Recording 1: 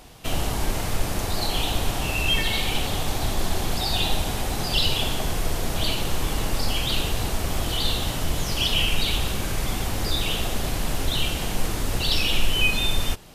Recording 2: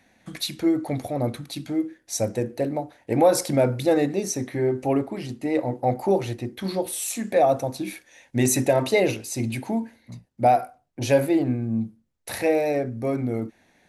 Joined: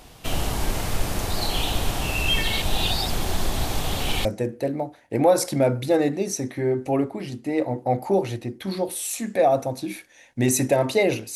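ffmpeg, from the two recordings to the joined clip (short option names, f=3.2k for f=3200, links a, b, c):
-filter_complex "[0:a]apad=whole_dur=11.35,atrim=end=11.35,asplit=2[a][b];[a]atrim=end=2.622[c];[b]atrim=start=2.618:end=4.252,asetpts=PTS-STARTPTS,areverse[d];[1:a]atrim=start=2.218:end=9.32[e];[c][d]acrossfade=d=0.004:c1=hsin:c2=hsin[f];[f][e]acrossfade=d=0.004:c1=hsin:c2=hsin"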